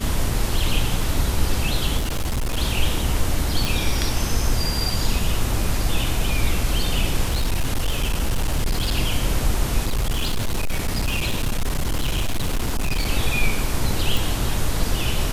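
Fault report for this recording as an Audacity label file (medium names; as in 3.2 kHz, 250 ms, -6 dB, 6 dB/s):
1.970000	2.580000	clipped -19.5 dBFS
3.650000	3.650000	pop
7.260000	8.970000	clipped -16.5 dBFS
9.860000	13.080000	clipped -17.5 dBFS
14.170000	14.170000	pop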